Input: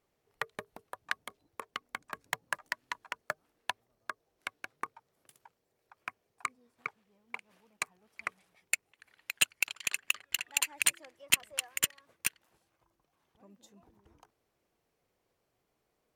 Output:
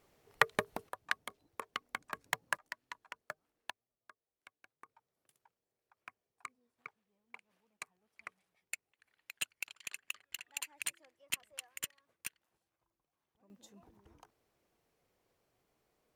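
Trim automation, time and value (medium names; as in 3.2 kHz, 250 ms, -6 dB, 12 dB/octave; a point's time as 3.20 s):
+9 dB
from 0.89 s -0.5 dB
from 2.57 s -9 dB
from 3.70 s -20 dB
from 4.89 s -11.5 dB
from 13.50 s +0.5 dB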